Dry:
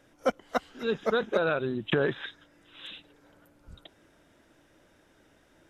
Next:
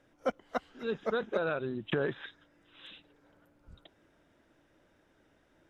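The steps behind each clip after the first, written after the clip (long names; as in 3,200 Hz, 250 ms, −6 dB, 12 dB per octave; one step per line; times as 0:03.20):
high-shelf EQ 4,900 Hz −8.5 dB
level −5 dB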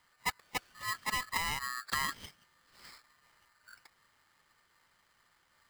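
ring modulator with a square carrier 1,500 Hz
level −3 dB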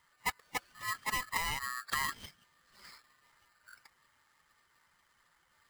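spectral magnitudes quantised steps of 15 dB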